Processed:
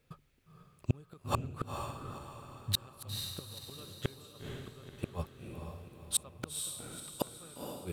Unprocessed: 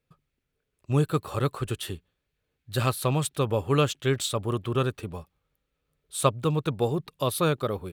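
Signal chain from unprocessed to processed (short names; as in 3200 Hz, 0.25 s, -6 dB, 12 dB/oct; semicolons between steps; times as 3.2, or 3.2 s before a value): flipped gate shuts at -23 dBFS, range -40 dB; diffused feedback echo 0.479 s, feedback 44%, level -4 dB; gain +8 dB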